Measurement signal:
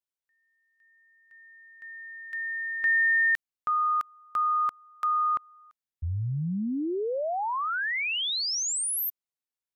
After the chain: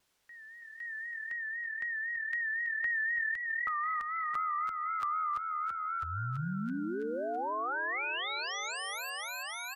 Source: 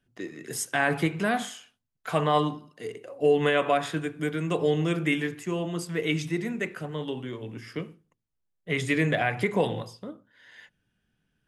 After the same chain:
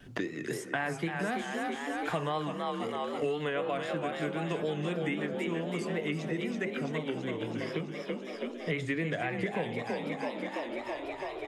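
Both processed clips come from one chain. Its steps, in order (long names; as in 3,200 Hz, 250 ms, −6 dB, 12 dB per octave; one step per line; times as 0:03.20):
high-shelf EQ 9,000 Hz −11.5 dB
on a send: echo with shifted repeats 331 ms, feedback 58%, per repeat +40 Hz, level −6 dB
on the sum: pitch vibrato 3.9 Hz 67 cents
multiband upward and downward compressor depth 100%
level −7.5 dB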